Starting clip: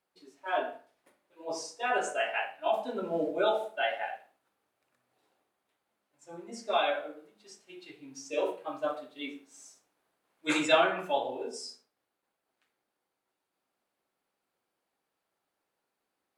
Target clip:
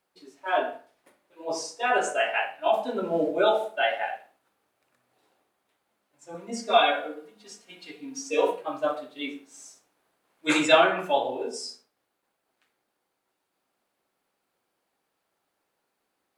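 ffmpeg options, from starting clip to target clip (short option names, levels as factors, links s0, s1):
-filter_complex "[0:a]asettb=1/sr,asplit=3[s0][s1][s2];[s0]atrim=end=6.344[s3];[s1]atrim=start=6.34:end=8.61,asetpts=PTS-STARTPTS,afade=t=in:d=0.004:c=qsin,afade=t=out:st=2.266:d=0.004:c=qsin,aecho=1:1:4.2:0.84,atrim=end_sample=100107[s4];[s2]atrim=start=8.606[s5];[s3][s4]acrossfade=d=0.004:c1=hsin:c2=qsin[s6];[s6][s5]acrossfade=d=0.004:c1=qsin:c2=hsin,volume=1.88"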